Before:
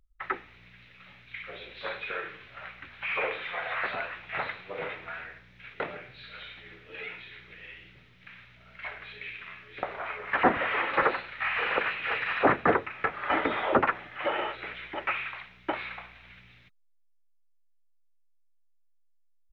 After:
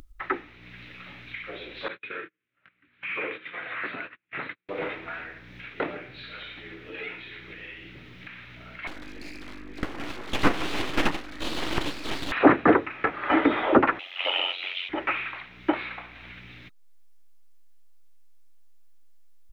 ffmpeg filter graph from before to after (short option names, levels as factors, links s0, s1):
-filter_complex "[0:a]asettb=1/sr,asplit=3[s0][s1][s2];[s0]atrim=end=1.884[s3];[s1]atrim=start=1.88:end=4.69,asetpts=PTS-STARTPTS,afade=t=in:d=0.004:c=qsin,afade=t=out:st=2.806:d=0.004:c=qsin,agate=range=0.01:threshold=0.0126:ratio=16:release=100:detection=peak,highpass=130,lowpass=2800,equalizer=f=750:w=1.1:g=-13[s4];[s2]atrim=start=4.686[s5];[s3][s4]acrossfade=d=0.004:c1=hsin:c2=qsin[s6];[s6][s5]acrossfade=d=0.004:c1=qsin:c2=hsin,asettb=1/sr,asplit=3[s7][s8][s9];[s7]atrim=end=8.874[s10];[s8]atrim=start=8.87:end=12.32,asetpts=PTS-STARTPTS,afade=t=in:d=0.004:c=qsin,afade=t=out:st=3.446:d=0.004:c=qsin,lowpass=2000,aeval=exprs='val(0)+0.00631*(sin(2*PI*50*n/s)+sin(2*PI*2*50*n/s)/2+sin(2*PI*3*50*n/s)/3+sin(2*PI*4*50*n/s)/4+sin(2*PI*5*50*n/s)/5)':c=same,aeval=exprs='abs(val(0))':c=same[s11];[s9]atrim=start=12.316[s12];[s10][s11]acrossfade=d=0.004:c1=hsin:c2=qsin[s13];[s13][s12]acrossfade=d=0.004:c1=qsin:c2=hsin,asettb=1/sr,asplit=3[s14][s15][s16];[s14]atrim=end=13.994[s17];[s15]atrim=start=13.99:end=14.89,asetpts=PTS-STARTPTS,afade=t=in:d=0.004:c=qsin,afade=t=out:st=0.896:d=0.004:c=qsin,highpass=f=550:w=0.5412,highpass=f=550:w=1.3066,highshelf=f=2200:t=q:w=3:g=9.5,aeval=exprs='val(0)*sin(2*PI*45*n/s)':c=same[s18];[s16]atrim=start=14.886[s19];[s17][s18]acrossfade=d=0.004:c1=hsin:c2=qsin[s20];[s20][s19]acrossfade=d=0.004:c1=qsin:c2=hsin,equalizer=f=300:t=o:w=0.57:g=11,acompressor=mode=upward:threshold=0.0112:ratio=2.5,volume=1.33"